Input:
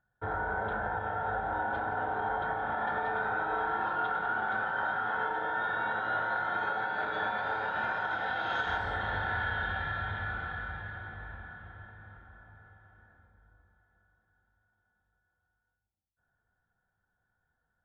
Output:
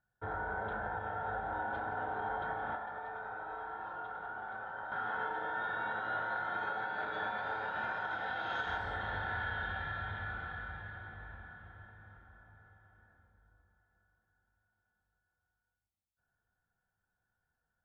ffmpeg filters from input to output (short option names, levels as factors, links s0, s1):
-filter_complex "[0:a]asettb=1/sr,asplit=3[s0][s1][s2];[s0]atrim=end=2.764[s3];[s1]atrim=start=2.76:end=4.92,asetpts=PTS-STARTPTS,afade=t=in:d=0.004:c=qsin,afade=t=out:st=2.156:d=0.004:c=qsin,acrossover=split=110|430|930|1900[s4][s5][s6][s7][s8];[s4]acompressor=threshold=0.001:ratio=4[s9];[s5]acompressor=threshold=0.00126:ratio=4[s10];[s6]acompressor=threshold=0.01:ratio=4[s11];[s7]acompressor=threshold=0.00708:ratio=4[s12];[s8]acompressor=threshold=0.00141:ratio=4[s13];[s9][s10][s11][s12][s13]amix=inputs=5:normalize=0[s14];[s2]atrim=start=4.916[s15];[s3][s14]acrossfade=d=0.004:c1=hsin:c2=qsin[s16];[s16][s15]acrossfade=d=0.004:c1=qsin:c2=hsin,volume=0.562"